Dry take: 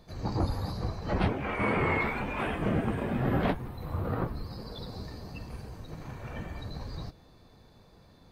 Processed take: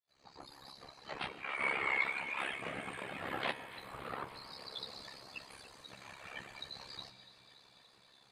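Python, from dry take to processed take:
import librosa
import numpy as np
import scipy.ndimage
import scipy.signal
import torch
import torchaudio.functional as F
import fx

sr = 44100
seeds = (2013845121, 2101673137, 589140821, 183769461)

p1 = fx.fade_in_head(x, sr, length_s=1.86)
p2 = fx.weighting(p1, sr, curve='ITU-R 468')
p3 = fx.dereverb_blind(p2, sr, rt60_s=0.95)
p4 = fx.peak_eq(p3, sr, hz=5700.0, db=-9.5, octaves=0.58)
p5 = fx.notch(p4, sr, hz=1500.0, q=26.0)
p6 = fx.rider(p5, sr, range_db=4, speed_s=2.0)
p7 = p5 + (p6 * librosa.db_to_amplitude(-1.0))
p8 = fx.comb_fb(p7, sr, f0_hz=160.0, decay_s=1.8, harmonics='all', damping=0.0, mix_pct=70)
p9 = p8 * np.sin(2.0 * np.pi * 34.0 * np.arange(len(p8)) / sr)
p10 = p9 + fx.echo_alternate(p9, sr, ms=143, hz=810.0, feedback_pct=84, wet_db=-13.5, dry=0)
y = p10 * librosa.db_to_amplitude(2.0)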